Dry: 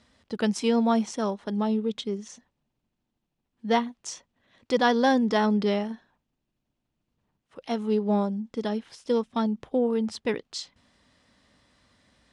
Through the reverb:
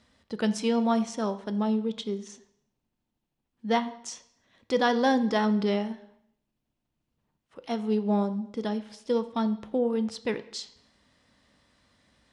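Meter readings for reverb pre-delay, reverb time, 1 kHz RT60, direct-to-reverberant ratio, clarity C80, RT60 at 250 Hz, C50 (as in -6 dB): 5 ms, 0.75 s, 0.75 s, 11.5 dB, 17.5 dB, 0.70 s, 15.0 dB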